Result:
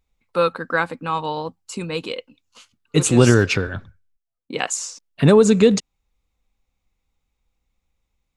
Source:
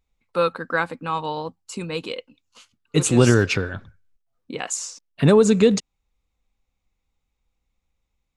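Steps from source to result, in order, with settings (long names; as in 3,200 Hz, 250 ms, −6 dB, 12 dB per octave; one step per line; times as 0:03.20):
0:03.67–0:04.66: multiband upward and downward expander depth 70%
level +2 dB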